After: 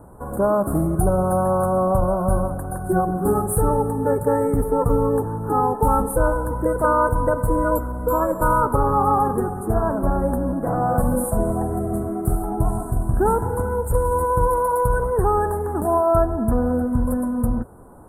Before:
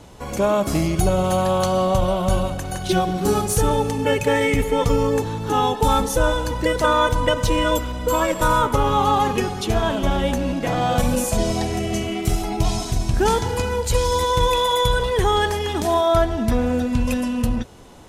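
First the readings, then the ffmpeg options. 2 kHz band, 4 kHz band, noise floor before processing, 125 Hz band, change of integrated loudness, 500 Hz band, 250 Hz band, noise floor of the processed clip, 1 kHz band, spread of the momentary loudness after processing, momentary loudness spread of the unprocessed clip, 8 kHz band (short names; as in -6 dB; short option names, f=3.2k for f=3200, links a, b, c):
-6.5 dB, under -40 dB, -29 dBFS, 0.0 dB, -0.5 dB, 0.0 dB, 0.0 dB, -30 dBFS, 0.0 dB, 5 LU, 5 LU, -6.0 dB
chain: -af "asuperstop=centerf=3800:order=12:qfactor=0.51"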